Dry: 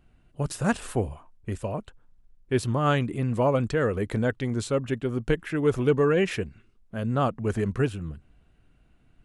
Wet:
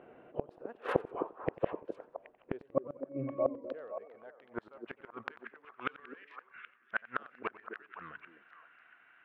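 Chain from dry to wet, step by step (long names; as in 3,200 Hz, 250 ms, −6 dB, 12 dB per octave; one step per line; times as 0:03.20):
adaptive Wiener filter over 9 samples
low-shelf EQ 410 Hz +4.5 dB
0:01.01–0:01.66: downward compressor 12 to 1, threshold −28 dBFS, peak gain reduction 7 dB
0:02.62–0:03.64: resonances in every octave C#, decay 0.41 s
soft clipping −9 dBFS, distortion −24 dB
high-pass filter sweep 480 Hz → 1,600 Hz, 0:03.25–0:06.11
gate with flip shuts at −28 dBFS, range −37 dB
high-frequency loss of the air 370 metres
on a send: echo through a band-pass that steps 258 ms, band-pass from 330 Hz, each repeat 1.4 octaves, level −4 dB
on the sum: feedback echo with a swinging delay time 92 ms, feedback 46%, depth 163 cents, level −19 dB
level +13 dB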